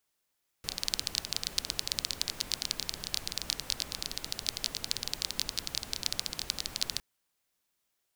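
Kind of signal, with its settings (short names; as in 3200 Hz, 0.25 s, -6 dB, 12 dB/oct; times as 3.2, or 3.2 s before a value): rain from filtered ticks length 6.36 s, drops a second 17, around 4400 Hz, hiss -9 dB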